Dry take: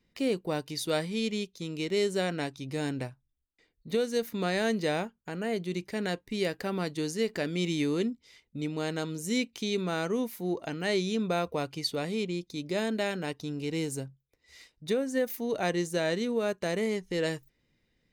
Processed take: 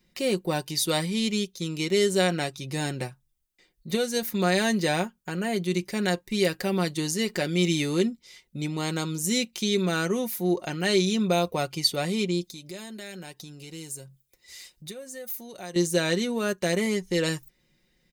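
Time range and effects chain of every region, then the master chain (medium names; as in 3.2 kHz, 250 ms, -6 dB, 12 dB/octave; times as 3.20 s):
12.44–15.76 s: treble shelf 4.2 kHz +7.5 dB + band-stop 5.7 kHz, Q 23 + compression 2.5:1, threshold -49 dBFS
whole clip: treble shelf 4.9 kHz +8.5 dB; comb 5.5 ms, depth 58%; trim +3 dB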